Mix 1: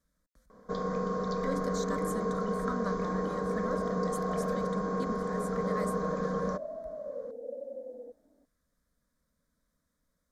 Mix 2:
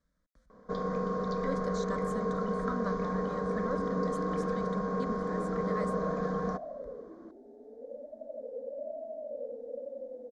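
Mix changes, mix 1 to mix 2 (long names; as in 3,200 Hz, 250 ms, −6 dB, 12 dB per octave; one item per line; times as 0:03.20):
second sound: entry +2.25 s
master: add high-frequency loss of the air 86 metres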